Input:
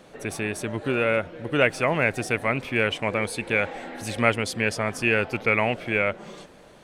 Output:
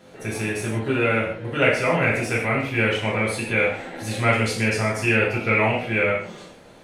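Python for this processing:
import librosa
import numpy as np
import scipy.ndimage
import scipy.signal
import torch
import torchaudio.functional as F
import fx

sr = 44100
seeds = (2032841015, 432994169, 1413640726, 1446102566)

y = fx.rev_gated(x, sr, seeds[0], gate_ms=200, shape='falling', drr_db=-6.0)
y = F.gain(torch.from_numpy(y), -4.5).numpy()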